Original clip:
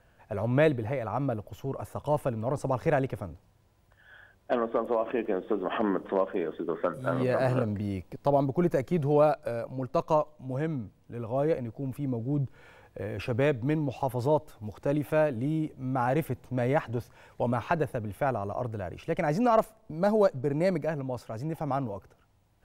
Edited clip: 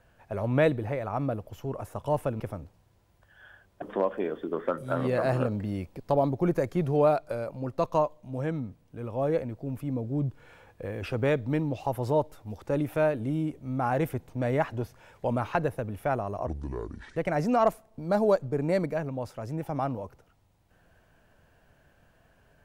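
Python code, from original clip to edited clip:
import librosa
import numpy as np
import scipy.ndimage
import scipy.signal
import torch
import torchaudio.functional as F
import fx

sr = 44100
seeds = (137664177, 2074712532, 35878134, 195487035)

y = fx.edit(x, sr, fx.cut(start_s=2.4, length_s=0.69),
    fx.cut(start_s=4.51, length_s=1.47),
    fx.speed_span(start_s=18.63, length_s=0.45, speed=0.65), tone=tone)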